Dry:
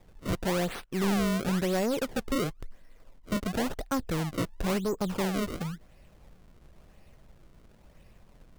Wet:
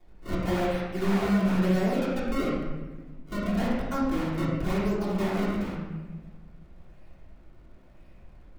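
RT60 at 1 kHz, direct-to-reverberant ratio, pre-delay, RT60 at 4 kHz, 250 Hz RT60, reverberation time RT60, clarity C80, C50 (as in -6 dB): 1.1 s, -9.5 dB, 3 ms, 0.85 s, 1.9 s, 1.3 s, 1.5 dB, -1.0 dB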